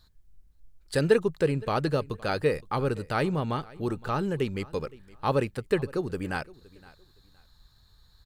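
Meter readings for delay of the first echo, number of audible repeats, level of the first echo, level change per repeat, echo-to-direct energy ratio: 0.516 s, 2, -22.0 dB, -12.0 dB, -21.5 dB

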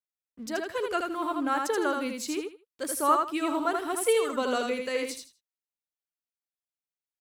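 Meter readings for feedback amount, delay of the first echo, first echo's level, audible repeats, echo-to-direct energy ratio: 21%, 80 ms, -4.0 dB, 3, -4.0 dB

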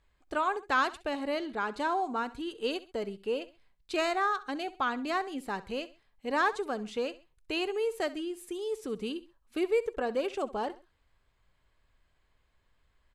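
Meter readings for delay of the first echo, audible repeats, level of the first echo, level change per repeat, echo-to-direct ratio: 66 ms, 2, -17.5 dB, -8.5 dB, -17.0 dB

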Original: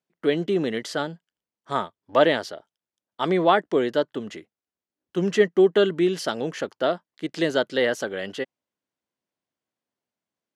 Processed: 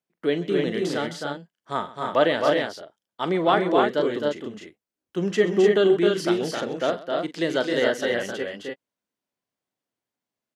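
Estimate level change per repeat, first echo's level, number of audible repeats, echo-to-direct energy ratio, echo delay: no steady repeat, -12.5 dB, 4, -1.0 dB, 42 ms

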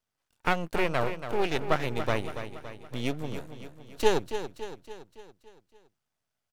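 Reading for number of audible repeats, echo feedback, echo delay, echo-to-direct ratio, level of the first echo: 5, 54%, 0.282 s, -8.5 dB, -10.0 dB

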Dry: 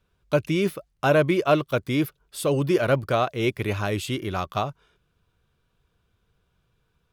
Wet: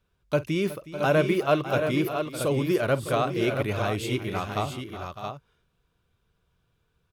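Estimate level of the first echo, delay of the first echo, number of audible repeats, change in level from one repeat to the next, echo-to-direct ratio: -18.0 dB, 48 ms, 4, no steady repeat, -4.5 dB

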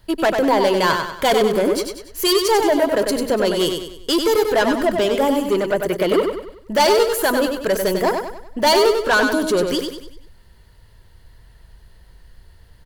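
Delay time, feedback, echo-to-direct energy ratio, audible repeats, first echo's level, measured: 96 ms, 43%, -4.5 dB, 5, -5.5 dB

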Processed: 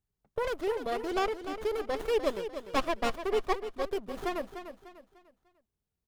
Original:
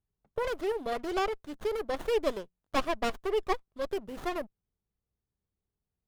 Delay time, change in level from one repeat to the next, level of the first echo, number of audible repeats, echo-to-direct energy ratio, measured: 0.298 s, -9.0 dB, -10.0 dB, 3, -9.5 dB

